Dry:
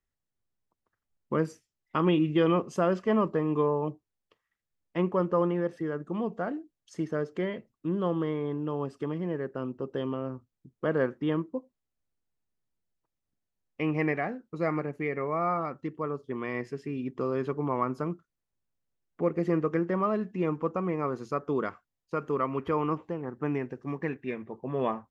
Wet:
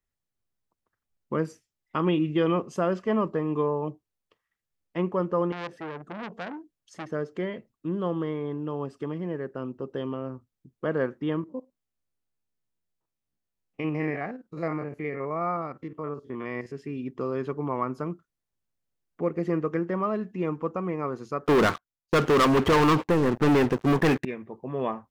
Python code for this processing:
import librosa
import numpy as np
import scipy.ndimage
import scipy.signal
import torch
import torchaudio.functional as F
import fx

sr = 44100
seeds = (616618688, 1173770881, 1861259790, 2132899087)

y = fx.transformer_sat(x, sr, knee_hz=1900.0, at=(5.52, 7.12))
y = fx.spec_steps(y, sr, hold_ms=50, at=(11.42, 16.74), fade=0.02)
y = fx.leveller(y, sr, passes=5, at=(21.46, 24.25))